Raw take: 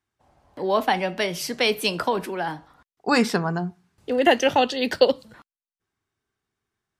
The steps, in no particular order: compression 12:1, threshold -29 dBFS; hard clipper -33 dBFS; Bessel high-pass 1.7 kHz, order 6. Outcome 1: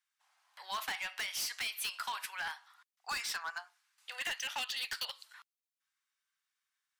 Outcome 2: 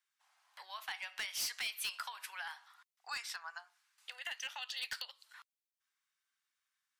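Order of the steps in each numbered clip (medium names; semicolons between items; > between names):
Bessel high-pass > compression > hard clipper; compression > Bessel high-pass > hard clipper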